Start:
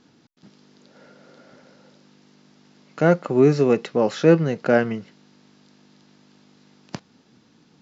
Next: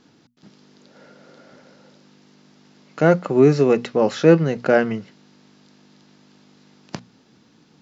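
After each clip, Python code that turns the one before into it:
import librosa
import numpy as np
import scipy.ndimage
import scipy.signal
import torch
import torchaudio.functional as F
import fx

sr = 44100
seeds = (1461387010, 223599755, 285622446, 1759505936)

y = fx.hum_notches(x, sr, base_hz=60, count=4)
y = y * 10.0 ** (2.0 / 20.0)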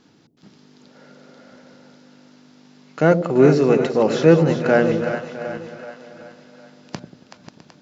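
y = fx.reverse_delay_fb(x, sr, ms=328, feedback_pct=47, wet_db=-11.0)
y = fx.echo_split(y, sr, split_hz=580.0, low_ms=92, high_ms=378, feedback_pct=52, wet_db=-8.5)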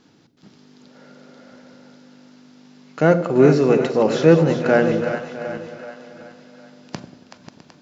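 y = fx.rev_schroeder(x, sr, rt60_s=0.85, comb_ms=32, drr_db=14.5)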